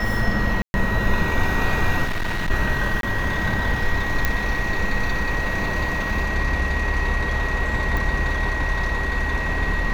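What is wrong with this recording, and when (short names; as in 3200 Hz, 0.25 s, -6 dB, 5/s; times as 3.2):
tone 1900 Hz -26 dBFS
0.62–0.74 gap 0.121 s
2.04–2.51 clipped -20.5 dBFS
3.01–3.03 gap 22 ms
4.25 pop -5 dBFS
7.97 pop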